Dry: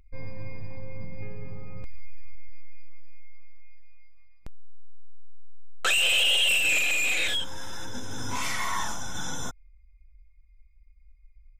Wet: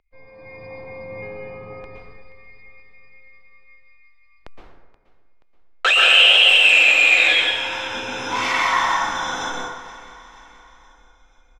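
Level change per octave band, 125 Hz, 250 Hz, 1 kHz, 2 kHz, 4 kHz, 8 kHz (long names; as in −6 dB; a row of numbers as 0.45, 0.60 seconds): can't be measured, +5.0 dB, +13.5 dB, +12.0 dB, +10.5 dB, −1.5 dB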